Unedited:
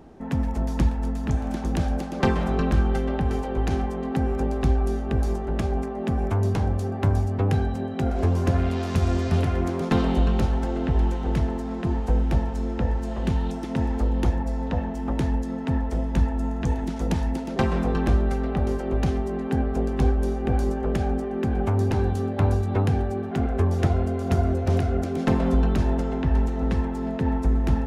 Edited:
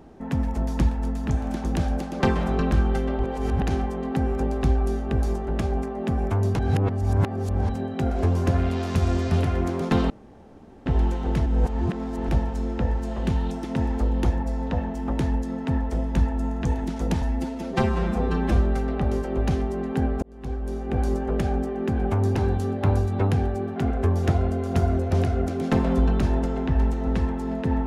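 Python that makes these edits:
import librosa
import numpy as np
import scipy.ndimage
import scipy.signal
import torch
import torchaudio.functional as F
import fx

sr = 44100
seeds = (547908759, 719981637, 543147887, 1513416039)

y = fx.edit(x, sr, fx.reverse_span(start_s=3.19, length_s=0.43),
    fx.reverse_span(start_s=6.59, length_s=1.1),
    fx.room_tone_fill(start_s=10.1, length_s=0.76),
    fx.reverse_span(start_s=11.46, length_s=0.83),
    fx.stretch_span(start_s=17.22, length_s=0.89, factor=1.5),
    fx.fade_in_span(start_s=19.78, length_s=0.89), tone=tone)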